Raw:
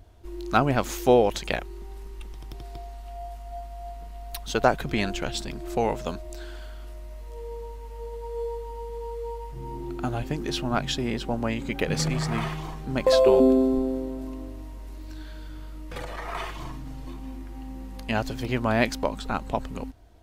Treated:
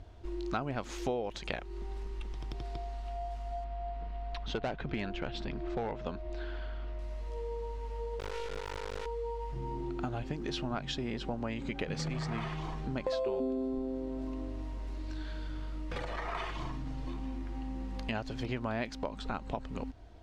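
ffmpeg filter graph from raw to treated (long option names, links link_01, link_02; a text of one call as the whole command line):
ffmpeg -i in.wav -filter_complex "[0:a]asettb=1/sr,asplit=3[link_01][link_02][link_03];[link_01]atrim=end=3.644[link_04];[link_02]atrim=start=3.64:end=6.99,asetpts=PTS-STARTPTS,afade=type=in:duration=0.004:curve=qsin,afade=type=out:start_time=3.346:duration=0.004:curve=qsin,lowpass=3200,asoftclip=type=hard:threshold=-18dB[link_05];[link_03]atrim=start=6.986[link_06];[link_04][link_05]acrossfade=duration=0.004:curve1=hsin:curve2=qsin[link_07];[link_07][link_06]acrossfade=duration=0.004:curve1=qsin:curve2=hsin,asettb=1/sr,asplit=3[link_08][link_09][link_10];[link_08]atrim=end=8.194[link_11];[link_09]atrim=start=8.19:end=9.06,asetpts=PTS-STARTPTS,afade=type=in:duration=0.004:curve=qsin,afade=type=out:start_time=0.866:duration=0.004:curve=qsin,aeval=exprs='val(0)+0.002*(sin(2*PI*60*n/s)+sin(2*PI*2*60*n/s)/2+sin(2*PI*3*60*n/s)/3+sin(2*PI*4*60*n/s)/4+sin(2*PI*5*60*n/s)/5)':channel_layout=same,acrusher=bits=3:dc=4:mix=0:aa=0.000001[link_12];[link_10]atrim=start=9.056[link_13];[link_11][link_12]acrossfade=duration=0.004:curve1=hsin:curve2=qsin[link_14];[link_14][link_13]acrossfade=duration=0.004:curve1=qsin:curve2=hsin,lowpass=5400,acompressor=threshold=-35dB:ratio=4,volume=1dB" out.wav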